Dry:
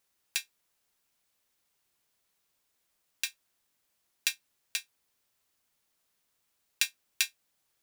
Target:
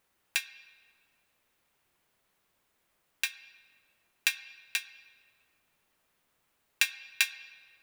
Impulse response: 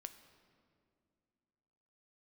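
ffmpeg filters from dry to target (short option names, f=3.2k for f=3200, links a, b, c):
-filter_complex "[0:a]asplit=2[a][b];[1:a]atrim=start_sample=2205,lowpass=3.2k[c];[b][c]afir=irnorm=-1:irlink=0,volume=8.5dB[d];[a][d]amix=inputs=2:normalize=0"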